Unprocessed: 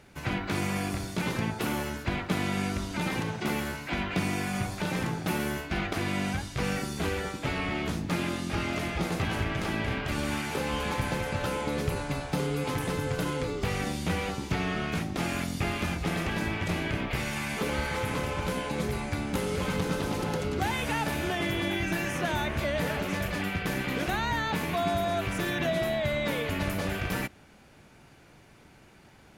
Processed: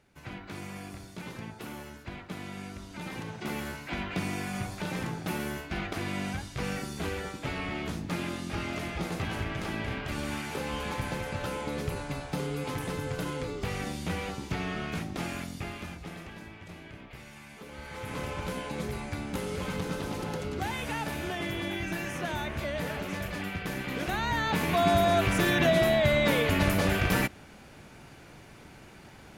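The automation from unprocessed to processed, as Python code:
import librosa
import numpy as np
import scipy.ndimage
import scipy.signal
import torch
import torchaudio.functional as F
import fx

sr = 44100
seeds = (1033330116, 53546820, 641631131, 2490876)

y = fx.gain(x, sr, db=fx.line((2.79, -11.0), (3.68, -3.5), (15.17, -3.5), (16.53, -16.0), (17.68, -16.0), (18.22, -4.0), (23.84, -4.0), (24.96, 5.0)))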